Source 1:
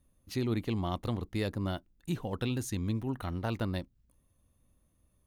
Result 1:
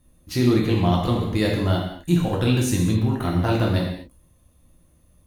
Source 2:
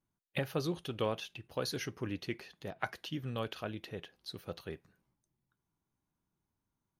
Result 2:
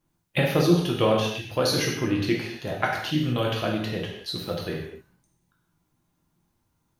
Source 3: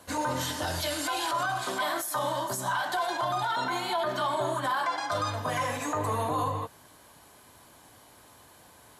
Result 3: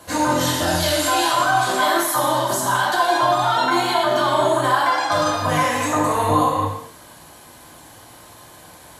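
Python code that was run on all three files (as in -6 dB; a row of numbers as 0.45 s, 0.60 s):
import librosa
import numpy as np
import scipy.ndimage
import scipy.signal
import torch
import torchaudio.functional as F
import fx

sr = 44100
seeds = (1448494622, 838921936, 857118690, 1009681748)

y = fx.rev_gated(x, sr, seeds[0], gate_ms=280, shape='falling', drr_db=-2.0)
y = librosa.util.normalize(y) * 10.0 ** (-6 / 20.0)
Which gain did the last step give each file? +8.5 dB, +9.5 dB, +6.5 dB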